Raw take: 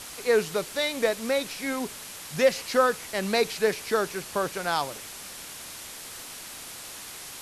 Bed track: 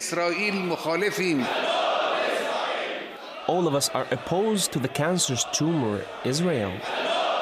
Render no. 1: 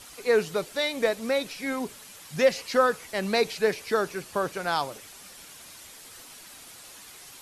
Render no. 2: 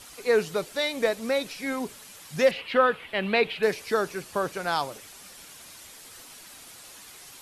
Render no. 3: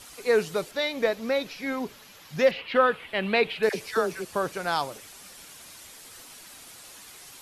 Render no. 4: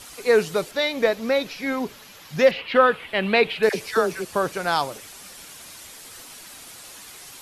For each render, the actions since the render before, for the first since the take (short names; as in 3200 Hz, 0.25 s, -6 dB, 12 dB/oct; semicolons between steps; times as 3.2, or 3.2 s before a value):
denoiser 8 dB, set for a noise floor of -41 dBFS
2.51–3.63 resonant high shelf 4300 Hz -13 dB, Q 3
0.71–2.75 bell 8900 Hz -14 dB 0.64 oct; 3.69–4.25 dispersion lows, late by 61 ms, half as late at 720 Hz
gain +4.5 dB